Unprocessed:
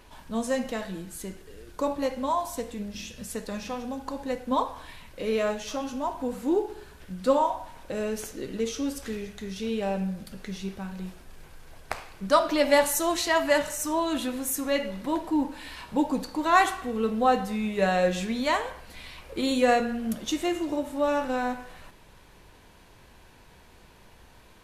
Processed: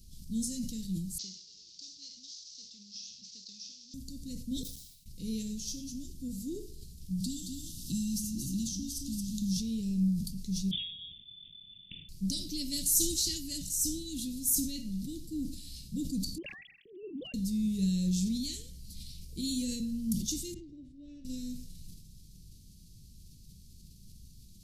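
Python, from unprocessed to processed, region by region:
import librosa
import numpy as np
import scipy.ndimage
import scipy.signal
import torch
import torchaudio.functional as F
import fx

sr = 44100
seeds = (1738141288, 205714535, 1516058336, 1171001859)

y = fx.chain(x, sr, fx.cvsd(bps=32000),
    fx.bandpass_q(hz=5000.0, q=0.97),
    fx.band_squash(depth_pct=70), at=(1.18, 3.94))
y = fx.chain(y, sr, fx.low_shelf(hz=300.0, db=-11.0),
    fx.level_steps(step_db=22),
    fx.quant_companded(bits=6), at=(4.63, 5.06))
y = fx.chain(y, sr, fx.brickwall_bandstop(low_hz=360.0, high_hz=2600.0),
    fx.echo_single(ms=221, db=-7.0),
    fx.band_squash(depth_pct=100), at=(7.2, 9.57))
y = fx.chain(y, sr, fx.resample_bad(factor=6, down='none', up='filtered'),
    fx.freq_invert(carrier_hz=3500), at=(10.71, 12.09))
y = fx.chain(y, sr, fx.sine_speech(),
    fx.dynamic_eq(hz=780.0, q=6.2, threshold_db=-31.0, ratio=4.0, max_db=-4), at=(16.38, 17.34))
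y = fx.chain(y, sr, fx.lowpass(hz=1500.0, slope=12),
    fx.low_shelf(hz=370.0, db=-10.5),
    fx.band_widen(depth_pct=40), at=(20.54, 21.25))
y = scipy.signal.sosfilt(scipy.signal.ellip(3, 1.0, 70, [180.0, 4800.0], 'bandstop', fs=sr, output='sos'), y)
y = fx.peak_eq(y, sr, hz=480.0, db=10.5, octaves=1.3)
y = fx.sustainer(y, sr, db_per_s=61.0)
y = y * librosa.db_to_amplitude(2.5)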